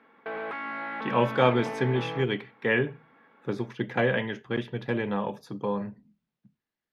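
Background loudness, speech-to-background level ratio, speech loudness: -35.5 LUFS, 7.0 dB, -28.5 LUFS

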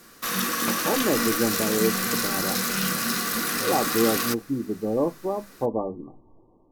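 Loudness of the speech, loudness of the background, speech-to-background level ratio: -27.5 LUFS, -24.5 LUFS, -3.0 dB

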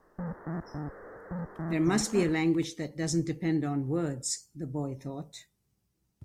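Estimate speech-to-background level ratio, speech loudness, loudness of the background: 9.0 dB, -30.5 LUFS, -39.5 LUFS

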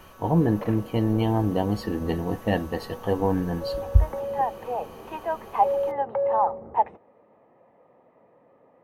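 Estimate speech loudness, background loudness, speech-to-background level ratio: -25.5 LUFS, -27.5 LUFS, 2.0 dB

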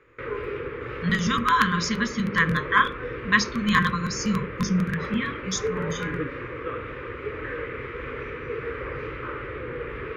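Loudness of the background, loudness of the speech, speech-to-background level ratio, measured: -33.5 LUFS, -24.5 LUFS, 9.0 dB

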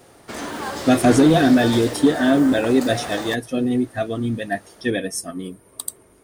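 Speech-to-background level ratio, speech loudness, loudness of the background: 9.5 dB, -19.0 LUFS, -28.5 LUFS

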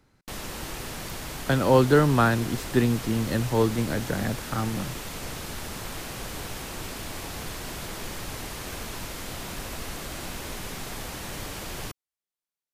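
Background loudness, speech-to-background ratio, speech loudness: -35.5 LUFS, 11.5 dB, -24.0 LUFS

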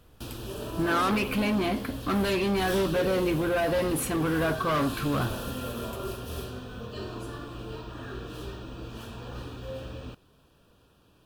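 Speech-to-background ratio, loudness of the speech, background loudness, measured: 9.5 dB, -27.5 LUFS, -37.0 LUFS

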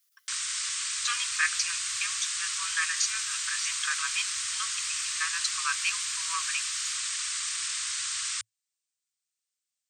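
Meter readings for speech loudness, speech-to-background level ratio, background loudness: -33.0 LUFS, -3.5 dB, -29.5 LUFS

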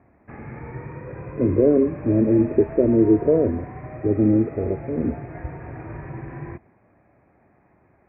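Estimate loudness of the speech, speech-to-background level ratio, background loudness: -20.0 LUFS, 16.0 dB, -36.0 LUFS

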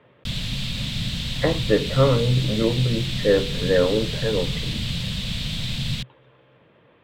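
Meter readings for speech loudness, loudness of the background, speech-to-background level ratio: -22.5 LUFS, -27.0 LUFS, 4.5 dB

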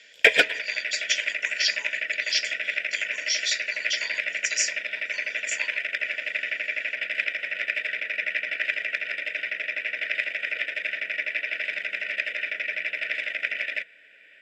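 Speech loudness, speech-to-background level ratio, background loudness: -29.5 LUFS, -3.0 dB, -26.5 LUFS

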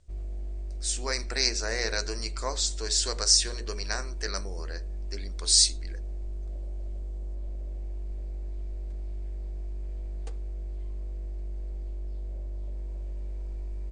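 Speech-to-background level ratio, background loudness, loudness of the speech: 12.5 dB, -38.5 LUFS, -26.0 LUFS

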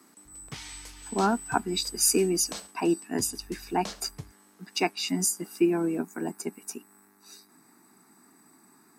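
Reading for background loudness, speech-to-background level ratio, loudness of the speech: -44.5 LUFS, 16.5 dB, -28.0 LUFS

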